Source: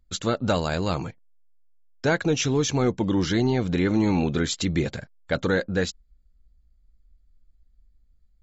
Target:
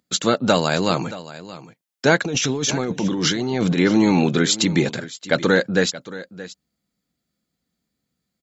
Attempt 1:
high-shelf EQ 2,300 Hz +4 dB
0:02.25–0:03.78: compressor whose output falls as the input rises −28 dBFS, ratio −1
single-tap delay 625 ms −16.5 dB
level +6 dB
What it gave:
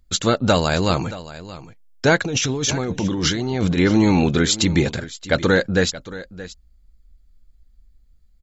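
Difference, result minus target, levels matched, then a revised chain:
125 Hz band +3.0 dB
high-pass filter 140 Hz 24 dB per octave
high-shelf EQ 2,300 Hz +4 dB
0:02.25–0:03.78: compressor whose output falls as the input rises −28 dBFS, ratio −1
single-tap delay 625 ms −16.5 dB
level +6 dB

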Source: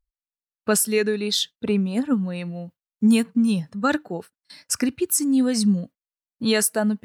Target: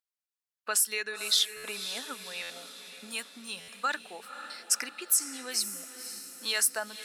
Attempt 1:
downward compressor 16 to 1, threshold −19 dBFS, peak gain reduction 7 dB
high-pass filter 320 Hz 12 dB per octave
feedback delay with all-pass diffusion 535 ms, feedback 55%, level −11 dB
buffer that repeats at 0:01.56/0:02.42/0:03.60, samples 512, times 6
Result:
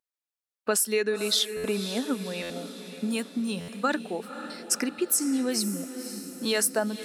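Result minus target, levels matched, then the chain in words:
250 Hz band +18.0 dB
downward compressor 16 to 1, threshold −19 dBFS, peak gain reduction 7 dB
high-pass filter 1,100 Hz 12 dB per octave
feedback delay with all-pass diffusion 535 ms, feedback 55%, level −11 dB
buffer that repeats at 0:01.56/0:02.42/0:03.60, samples 512, times 6

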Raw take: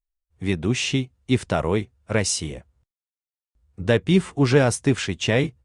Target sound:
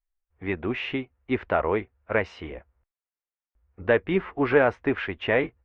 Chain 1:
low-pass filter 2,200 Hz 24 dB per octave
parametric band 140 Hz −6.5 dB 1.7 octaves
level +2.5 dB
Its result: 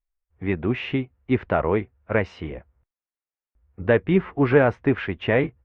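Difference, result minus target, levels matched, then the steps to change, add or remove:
125 Hz band +6.5 dB
change: parametric band 140 Hz −17.5 dB 1.7 octaves

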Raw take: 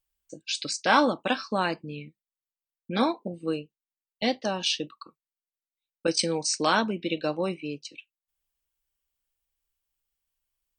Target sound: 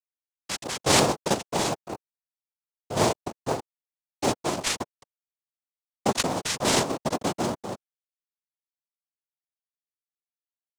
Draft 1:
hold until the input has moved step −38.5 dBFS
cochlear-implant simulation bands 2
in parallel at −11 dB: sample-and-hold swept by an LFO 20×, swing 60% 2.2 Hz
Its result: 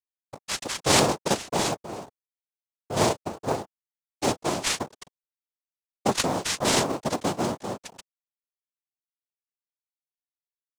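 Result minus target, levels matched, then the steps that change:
hold until the input has moved: distortion −12 dB
change: hold until the input has moved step −26.5 dBFS

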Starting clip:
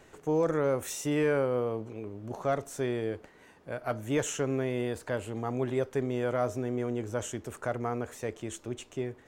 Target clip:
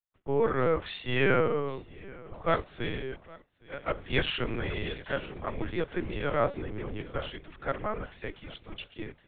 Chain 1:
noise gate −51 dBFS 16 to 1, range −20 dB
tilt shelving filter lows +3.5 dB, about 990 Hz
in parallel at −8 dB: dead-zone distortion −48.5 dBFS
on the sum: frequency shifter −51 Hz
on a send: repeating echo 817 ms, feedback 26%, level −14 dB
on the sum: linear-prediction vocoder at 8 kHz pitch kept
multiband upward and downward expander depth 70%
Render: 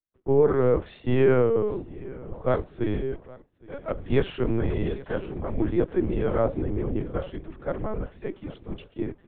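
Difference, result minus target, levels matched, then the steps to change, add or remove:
1,000 Hz band −6.5 dB
change: tilt shelving filter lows −6.5 dB, about 990 Hz

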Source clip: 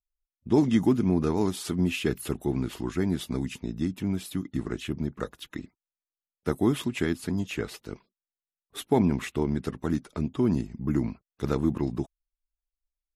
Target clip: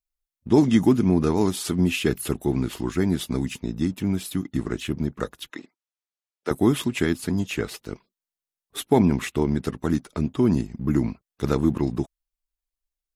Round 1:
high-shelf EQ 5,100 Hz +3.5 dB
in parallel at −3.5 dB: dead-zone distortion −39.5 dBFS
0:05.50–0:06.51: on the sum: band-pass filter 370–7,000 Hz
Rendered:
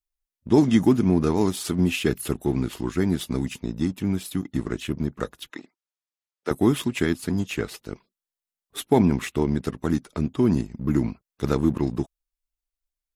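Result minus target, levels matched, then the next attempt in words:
dead-zone distortion: distortion +9 dB
high-shelf EQ 5,100 Hz +3.5 dB
in parallel at −3.5 dB: dead-zone distortion −50 dBFS
0:05.50–0:06.51: on the sum: band-pass filter 370–7,000 Hz

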